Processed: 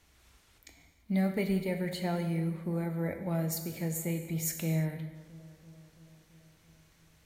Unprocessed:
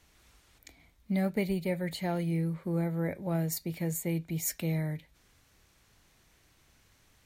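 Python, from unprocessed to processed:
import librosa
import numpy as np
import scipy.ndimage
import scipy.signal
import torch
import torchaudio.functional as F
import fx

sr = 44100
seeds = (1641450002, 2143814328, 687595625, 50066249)

y = fx.echo_bbd(x, sr, ms=335, stages=4096, feedback_pct=69, wet_db=-20)
y = fx.rev_gated(y, sr, seeds[0], gate_ms=370, shape='falling', drr_db=5.5)
y = y * librosa.db_to_amplitude(-1.5)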